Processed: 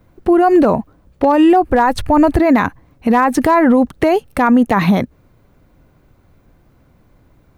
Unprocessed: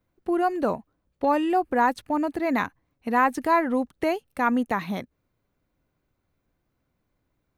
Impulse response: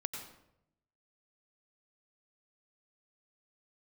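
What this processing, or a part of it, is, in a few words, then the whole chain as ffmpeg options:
mastering chain: -filter_complex "[0:a]asplit=3[s0][s1][s2];[s0]afade=t=out:st=1.7:d=0.02[s3];[s1]asubboost=boost=10:cutoff=81,afade=t=in:st=1.7:d=0.02,afade=t=out:st=2.37:d=0.02[s4];[s2]afade=t=in:st=2.37:d=0.02[s5];[s3][s4][s5]amix=inputs=3:normalize=0,equalizer=f=340:t=o:w=1.9:g=-2.5,acompressor=threshold=0.0631:ratio=2.5,tiltshelf=f=1300:g=4.5,asoftclip=type=hard:threshold=0.158,alimiter=level_in=15.8:limit=0.891:release=50:level=0:latency=1,volume=0.668"

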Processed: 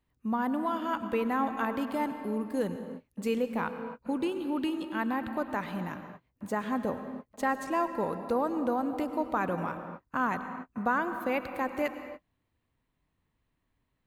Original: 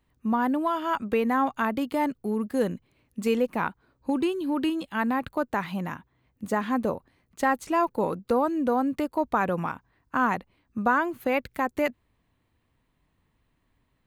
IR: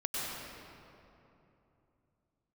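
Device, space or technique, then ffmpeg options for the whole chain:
keyed gated reverb: -filter_complex "[0:a]asplit=3[s0][s1][s2];[1:a]atrim=start_sample=2205[s3];[s1][s3]afir=irnorm=-1:irlink=0[s4];[s2]apad=whole_len=620439[s5];[s4][s5]sidechaingate=range=0.00316:threshold=0.00112:ratio=16:detection=peak,volume=0.266[s6];[s0][s6]amix=inputs=2:normalize=0,volume=0.447"

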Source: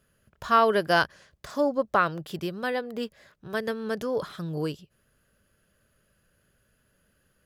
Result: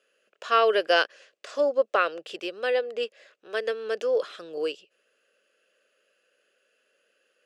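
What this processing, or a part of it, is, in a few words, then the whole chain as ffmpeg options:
phone speaker on a table: -af "highpass=f=370:w=0.5412,highpass=f=370:w=1.3066,equalizer=f=500:t=q:w=4:g=7,equalizer=f=930:t=q:w=4:g=-9,equalizer=f=2700:t=q:w=4:g=10,lowpass=f=8600:w=0.5412,lowpass=f=8600:w=1.3066"

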